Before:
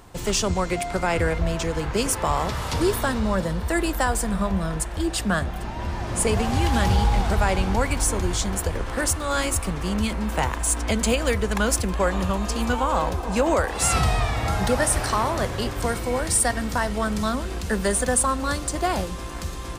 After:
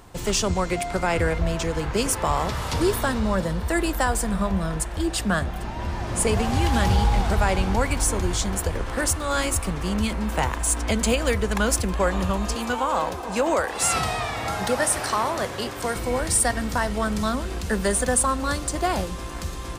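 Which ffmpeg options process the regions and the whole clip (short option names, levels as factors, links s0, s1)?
-filter_complex "[0:a]asettb=1/sr,asplit=3[s0][s1][s2];[s0]atrim=end=12.554[s3];[s1]atrim=start=12.55:end=15.95,asetpts=PTS-STARTPTS,afade=t=in:d=0.004:c=qsin,afade=t=out:st=3.396:d=0.004:c=qsin,highpass=59,lowshelf=f=160:g=-11.5[s4];[s2]atrim=start=15.946[s5];[s3][s4]acrossfade=d=0.004:c1=hsin:c2=qsin[s6];[s6][s5]acrossfade=d=0.004:c1=qsin:c2=hsin"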